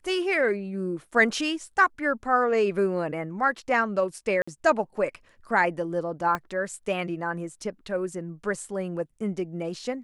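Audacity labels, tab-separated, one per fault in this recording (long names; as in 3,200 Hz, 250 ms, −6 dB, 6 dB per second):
4.420000	4.470000	drop-out 55 ms
6.350000	6.350000	click −15 dBFS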